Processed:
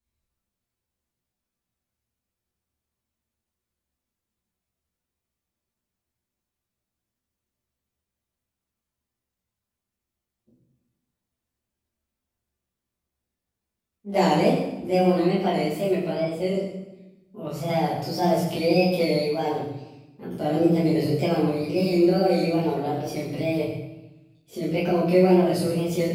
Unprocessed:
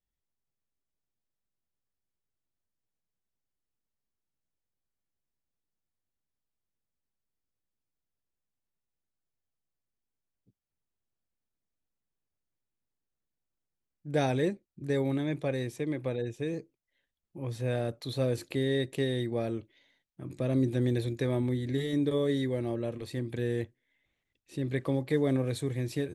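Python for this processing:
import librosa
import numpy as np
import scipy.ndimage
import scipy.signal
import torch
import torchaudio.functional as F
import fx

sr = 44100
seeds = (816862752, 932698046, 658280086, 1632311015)

y = fx.pitch_heads(x, sr, semitones=4.0)
y = fx.wow_flutter(y, sr, seeds[0], rate_hz=2.1, depth_cents=120.0)
y = fx.rev_fdn(y, sr, rt60_s=0.98, lf_ratio=1.5, hf_ratio=0.9, size_ms=80.0, drr_db=-8.5)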